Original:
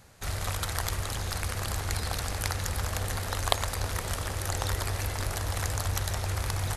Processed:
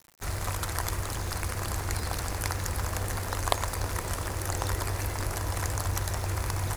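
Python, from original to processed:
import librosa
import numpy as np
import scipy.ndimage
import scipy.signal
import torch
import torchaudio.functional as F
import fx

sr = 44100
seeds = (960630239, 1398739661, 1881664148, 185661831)

y = fx.peak_eq(x, sr, hz=3500.0, db=-6.5, octaves=0.58)
y = fx.small_body(y, sr, hz=(330.0, 990.0, 3500.0), ring_ms=40, db=6)
y = fx.quant_dither(y, sr, seeds[0], bits=8, dither='none')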